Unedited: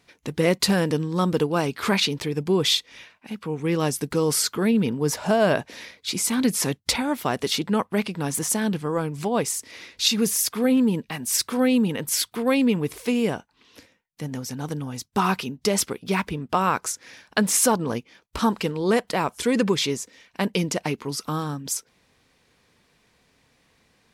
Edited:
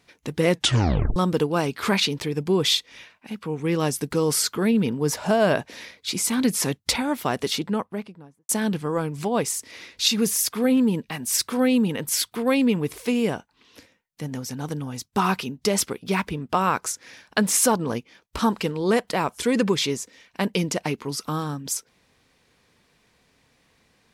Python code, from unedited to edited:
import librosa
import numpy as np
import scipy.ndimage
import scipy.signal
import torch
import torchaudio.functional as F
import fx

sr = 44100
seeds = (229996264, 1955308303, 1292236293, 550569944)

y = fx.studio_fade_out(x, sr, start_s=7.38, length_s=1.11)
y = fx.edit(y, sr, fx.tape_stop(start_s=0.5, length_s=0.66), tone=tone)